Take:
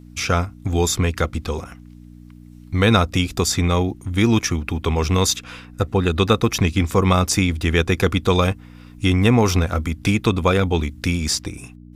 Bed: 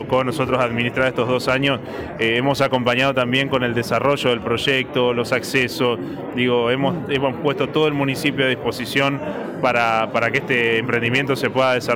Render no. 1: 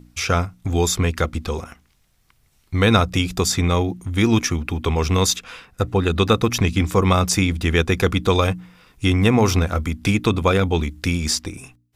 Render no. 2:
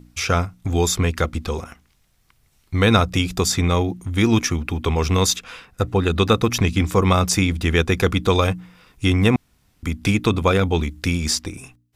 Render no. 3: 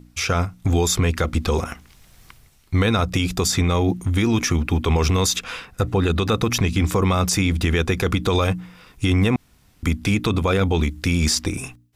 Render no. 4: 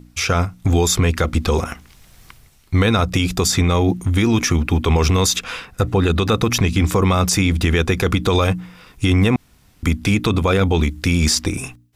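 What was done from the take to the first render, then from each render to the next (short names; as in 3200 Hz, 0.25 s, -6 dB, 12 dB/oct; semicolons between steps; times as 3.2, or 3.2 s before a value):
de-hum 60 Hz, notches 5
9.36–9.83 room tone
AGC gain up to 15.5 dB; limiter -10.5 dBFS, peak gain reduction 9.5 dB
gain +3 dB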